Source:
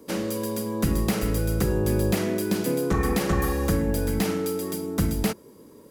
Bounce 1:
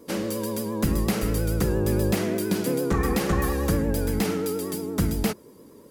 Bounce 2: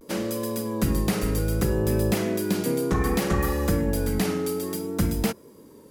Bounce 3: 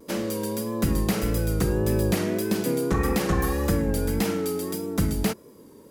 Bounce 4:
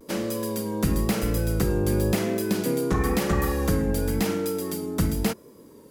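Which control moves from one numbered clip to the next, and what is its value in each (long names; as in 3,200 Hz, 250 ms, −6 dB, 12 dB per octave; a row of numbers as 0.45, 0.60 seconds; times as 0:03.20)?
pitch vibrato, speed: 8.6, 0.63, 1.7, 0.97 Hertz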